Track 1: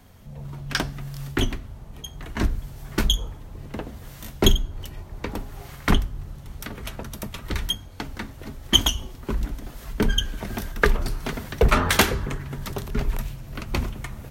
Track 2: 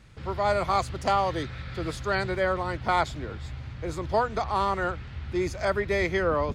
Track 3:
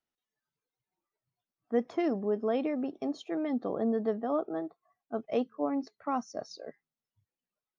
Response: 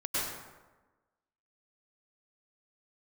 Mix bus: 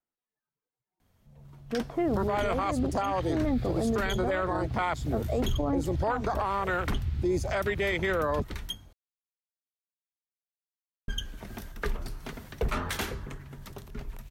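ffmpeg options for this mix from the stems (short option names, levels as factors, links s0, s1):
-filter_complex "[0:a]adelay=1000,volume=0.106,asplit=3[s0][s1][s2];[s0]atrim=end=8.93,asetpts=PTS-STARTPTS,afade=t=out:st=8.926:d=0.004:c=hsin[s3];[s1]atrim=start=8.93:end=11.08,asetpts=PTS-STARTPTS,volume=0[s4];[s2]atrim=start=11.08,asetpts=PTS-STARTPTS,afade=t=in:d=0.004:c=hsin[s5];[s3][s4][s5]concat=n=3:v=0:a=1[s6];[1:a]afwtdn=0.0251,highshelf=f=3100:g=10,adelay=1900,volume=0.668[s7];[2:a]alimiter=level_in=1.12:limit=0.0631:level=0:latency=1,volume=0.891,lowpass=1700,volume=0.794[s8];[s7][s8]amix=inputs=2:normalize=0,highshelf=f=5900:g=8.5,alimiter=level_in=1.26:limit=0.0631:level=0:latency=1:release=154,volume=0.794,volume=1[s9];[s6][s9]amix=inputs=2:normalize=0,dynaudnorm=f=190:g=17:m=2.82,alimiter=limit=0.1:level=0:latency=1:release=13"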